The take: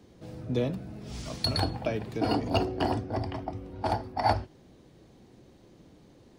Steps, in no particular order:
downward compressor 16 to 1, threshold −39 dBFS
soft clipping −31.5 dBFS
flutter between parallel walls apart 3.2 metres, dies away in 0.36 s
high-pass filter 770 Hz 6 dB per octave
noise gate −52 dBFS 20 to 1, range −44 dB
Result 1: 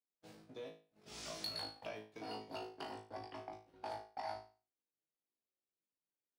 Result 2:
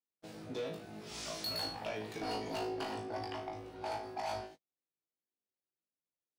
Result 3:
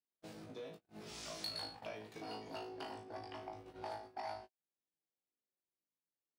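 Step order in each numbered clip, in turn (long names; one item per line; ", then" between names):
downward compressor, then soft clipping, then high-pass filter, then noise gate, then flutter between parallel walls
high-pass filter, then soft clipping, then downward compressor, then flutter between parallel walls, then noise gate
downward compressor, then flutter between parallel walls, then soft clipping, then high-pass filter, then noise gate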